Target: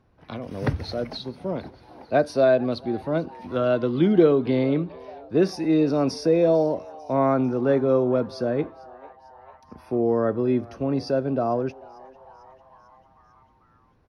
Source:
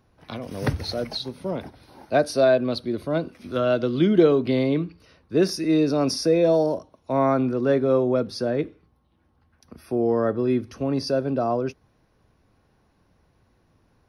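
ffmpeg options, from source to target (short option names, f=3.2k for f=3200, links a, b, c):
-filter_complex "[0:a]lowpass=f=2.5k:p=1,asplit=2[a][b];[b]asplit=5[c][d][e][f][g];[c]adelay=447,afreqshift=130,volume=-23dB[h];[d]adelay=894,afreqshift=260,volume=-27dB[i];[e]adelay=1341,afreqshift=390,volume=-31dB[j];[f]adelay=1788,afreqshift=520,volume=-35dB[k];[g]adelay=2235,afreqshift=650,volume=-39.1dB[l];[h][i][j][k][l]amix=inputs=5:normalize=0[m];[a][m]amix=inputs=2:normalize=0"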